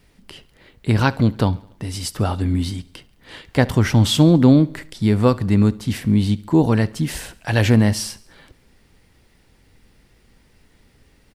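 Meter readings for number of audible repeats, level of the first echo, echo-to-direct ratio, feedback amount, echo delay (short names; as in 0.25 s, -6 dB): 3, -22.5 dB, -21.0 dB, 56%, 70 ms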